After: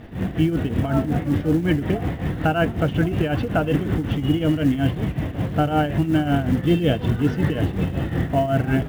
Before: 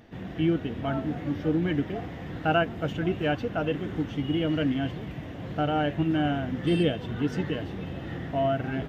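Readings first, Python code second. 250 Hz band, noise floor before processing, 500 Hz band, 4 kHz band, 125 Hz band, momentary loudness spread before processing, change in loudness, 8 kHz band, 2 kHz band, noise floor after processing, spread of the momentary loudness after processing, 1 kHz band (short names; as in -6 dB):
+6.5 dB, -39 dBFS, +4.5 dB, +3.0 dB, +9.5 dB, 10 LU, +6.5 dB, n/a, +4.5 dB, -30 dBFS, 5 LU, +4.5 dB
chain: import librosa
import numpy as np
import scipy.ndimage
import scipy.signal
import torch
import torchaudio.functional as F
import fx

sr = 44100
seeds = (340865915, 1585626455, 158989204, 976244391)

p1 = scipy.signal.sosfilt(scipy.signal.butter(2, 3800.0, 'lowpass', fs=sr, output='sos'), x)
p2 = fx.low_shelf(p1, sr, hz=150.0, db=8.0)
p3 = fx.over_compress(p2, sr, threshold_db=-28.0, ratio=-1.0)
p4 = p2 + (p3 * librosa.db_to_amplitude(0.5))
p5 = fx.tremolo_shape(p4, sr, shape='triangle', hz=5.4, depth_pct=75)
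p6 = fx.quant_float(p5, sr, bits=4)
y = p6 * librosa.db_to_amplitude(4.0)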